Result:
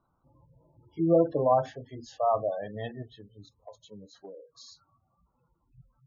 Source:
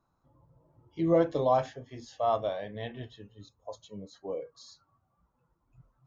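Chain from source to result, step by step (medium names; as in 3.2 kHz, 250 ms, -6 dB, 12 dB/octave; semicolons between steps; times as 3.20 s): spectral gate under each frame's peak -20 dB strong; 3.02–4.55 s: compression 6:1, threshold -46 dBFS, peak gain reduction 14 dB; trim +2 dB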